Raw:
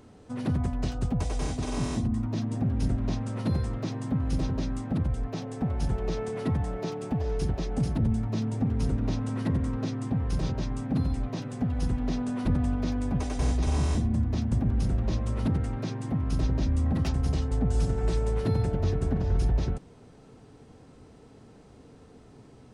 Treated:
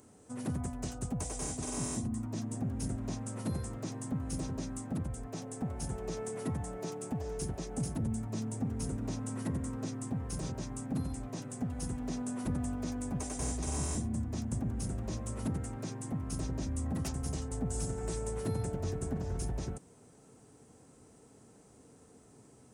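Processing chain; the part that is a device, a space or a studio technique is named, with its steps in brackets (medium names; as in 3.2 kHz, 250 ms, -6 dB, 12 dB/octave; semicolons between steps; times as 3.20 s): budget condenser microphone (high-pass 110 Hz 6 dB/octave; resonant high shelf 5.7 kHz +12 dB, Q 1.5); trim -6 dB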